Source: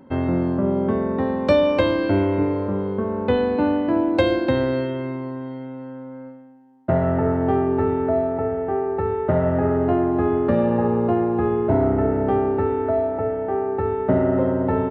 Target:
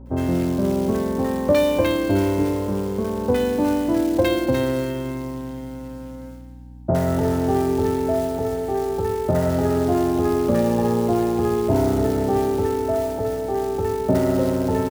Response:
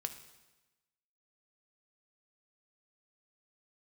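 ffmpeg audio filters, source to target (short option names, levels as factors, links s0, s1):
-filter_complex "[0:a]acrusher=bits=5:mode=log:mix=0:aa=0.000001,acrossover=split=1100[s0][s1];[s1]adelay=60[s2];[s0][s2]amix=inputs=2:normalize=0,aeval=exprs='val(0)+0.0112*(sin(2*PI*60*n/s)+sin(2*PI*2*60*n/s)/2+sin(2*PI*3*60*n/s)/3+sin(2*PI*4*60*n/s)/4+sin(2*PI*5*60*n/s)/5)':c=same"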